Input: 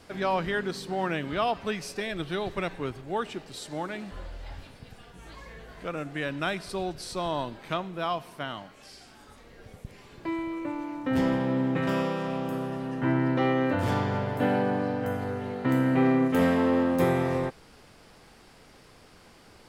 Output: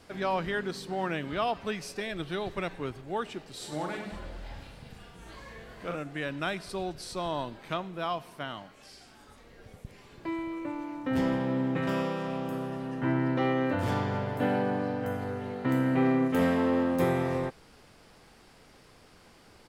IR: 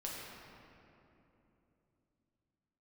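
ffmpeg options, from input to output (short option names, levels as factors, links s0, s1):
-filter_complex "[0:a]asplit=3[s0][s1][s2];[s0]afade=t=out:st=3.59:d=0.02[s3];[s1]aecho=1:1:40|100|190|325|527.5:0.631|0.398|0.251|0.158|0.1,afade=t=in:st=3.59:d=0.02,afade=t=out:st=5.96:d=0.02[s4];[s2]afade=t=in:st=5.96:d=0.02[s5];[s3][s4][s5]amix=inputs=3:normalize=0,volume=0.75"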